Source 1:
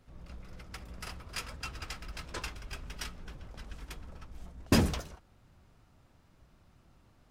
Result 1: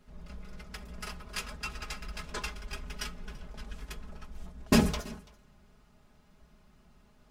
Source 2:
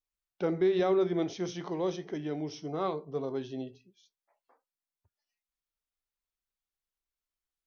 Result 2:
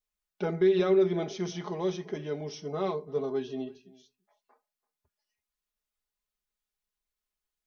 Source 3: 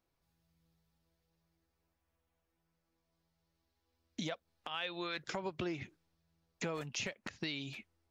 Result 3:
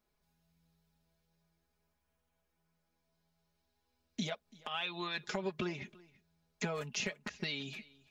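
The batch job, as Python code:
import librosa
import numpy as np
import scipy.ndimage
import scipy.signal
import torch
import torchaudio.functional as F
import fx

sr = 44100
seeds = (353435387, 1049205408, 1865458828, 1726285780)

p1 = x + 0.76 * np.pad(x, (int(4.8 * sr / 1000.0), 0))[:len(x)]
y = p1 + fx.echo_single(p1, sr, ms=335, db=-22.5, dry=0)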